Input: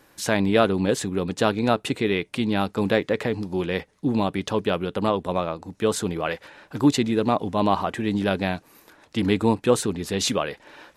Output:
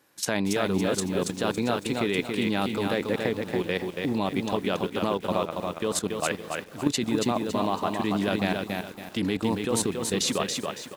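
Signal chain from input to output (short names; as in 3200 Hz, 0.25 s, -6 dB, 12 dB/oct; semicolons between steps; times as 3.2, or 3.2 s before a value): HPF 110 Hz 12 dB/oct; high shelf 3200 Hz +4.5 dB; level quantiser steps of 13 dB; frequency-shifting echo 0.277 s, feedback 61%, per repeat +31 Hz, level -19 dB; lo-fi delay 0.28 s, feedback 35%, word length 8-bit, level -4 dB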